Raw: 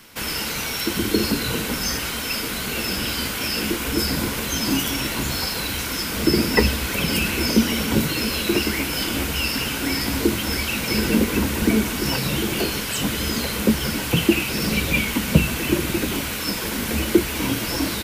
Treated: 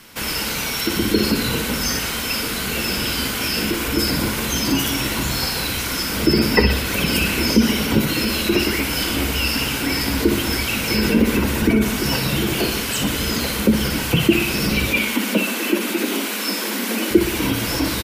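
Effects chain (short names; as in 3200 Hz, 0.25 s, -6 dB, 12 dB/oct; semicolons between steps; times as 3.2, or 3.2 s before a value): 14.87–17.11 steep high-pass 200 Hz 72 dB/oct; spectral gate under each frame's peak -30 dB strong; feedback echo 61 ms, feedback 57%, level -9 dB; gain +2 dB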